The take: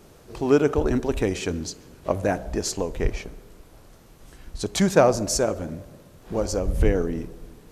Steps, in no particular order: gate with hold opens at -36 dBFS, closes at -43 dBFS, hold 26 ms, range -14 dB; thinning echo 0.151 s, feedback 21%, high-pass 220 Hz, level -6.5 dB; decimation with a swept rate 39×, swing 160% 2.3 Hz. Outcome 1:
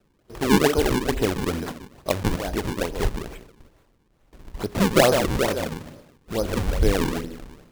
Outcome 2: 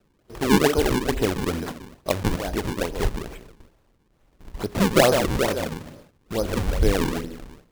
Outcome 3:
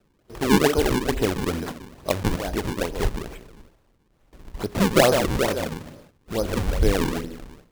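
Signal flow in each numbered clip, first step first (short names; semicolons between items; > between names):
gate with hold > thinning echo > decimation with a swept rate; thinning echo > decimation with a swept rate > gate with hold; thinning echo > gate with hold > decimation with a swept rate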